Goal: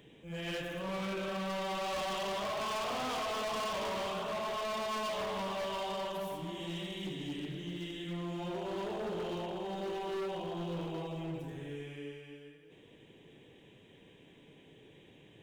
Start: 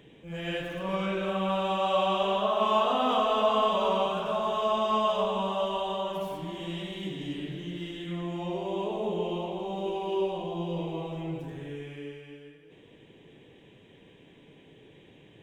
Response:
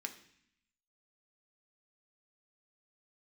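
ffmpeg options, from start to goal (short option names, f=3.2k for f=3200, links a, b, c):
-af "volume=30.5dB,asoftclip=hard,volume=-30.5dB,highshelf=f=5.1k:g=6,volume=-4dB"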